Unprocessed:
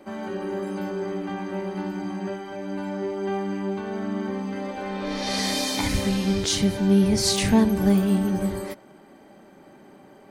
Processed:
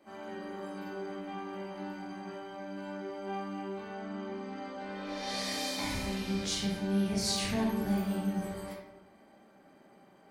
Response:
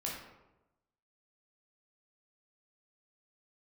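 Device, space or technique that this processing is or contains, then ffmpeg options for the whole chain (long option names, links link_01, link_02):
bathroom: -filter_complex "[0:a]asettb=1/sr,asplit=3[link_01][link_02][link_03];[link_01]atrim=end=3.924[link_04];[link_02]atrim=start=3.92:end=4.9,asetpts=PTS-STARTPTS,afade=type=in:duration=0.004:curve=qsin,afade=type=out:start_time=0.976:duration=0.004:curve=qsin,lowpass=8100[link_05];[link_03]atrim=start=4.896[link_06];[link_04][link_05]acrossfade=duration=0.004:curve1=hsin:curve2=qsin[link_07];[link_07][link_06]acrossfade=duration=0.004:curve1=qsin:curve2=hsin,lowshelf=frequency=440:gain=-6.5[link_08];[1:a]atrim=start_sample=2205[link_09];[link_08][link_09]afir=irnorm=-1:irlink=0,volume=-9dB"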